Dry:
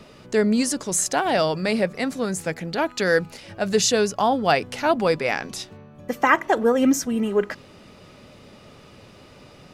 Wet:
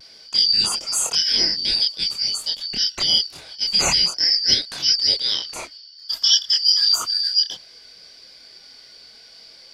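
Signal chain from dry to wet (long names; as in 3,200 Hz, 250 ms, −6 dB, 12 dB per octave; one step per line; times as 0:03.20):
band-splitting scrambler in four parts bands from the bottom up 4321
multi-voice chorus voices 4, 0.86 Hz, delay 26 ms, depth 3.6 ms
pitch vibrato 0.31 Hz 13 cents
level +4.5 dB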